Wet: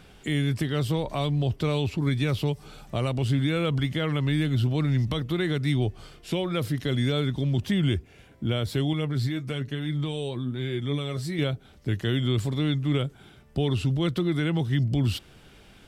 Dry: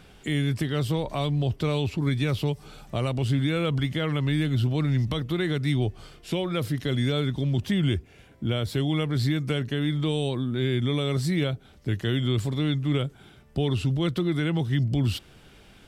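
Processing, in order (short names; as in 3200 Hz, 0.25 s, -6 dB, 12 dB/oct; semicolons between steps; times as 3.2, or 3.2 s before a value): 8.93–11.39 flange 1.1 Hz, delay 5.4 ms, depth 4.2 ms, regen +49%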